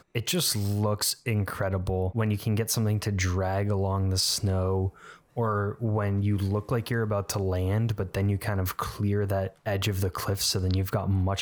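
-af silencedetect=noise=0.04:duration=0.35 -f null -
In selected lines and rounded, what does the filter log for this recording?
silence_start: 4.88
silence_end: 5.37 | silence_duration: 0.49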